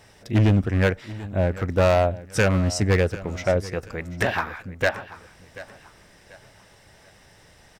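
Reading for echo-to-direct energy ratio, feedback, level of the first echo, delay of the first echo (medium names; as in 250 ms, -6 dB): -16.5 dB, 34%, -17.0 dB, 737 ms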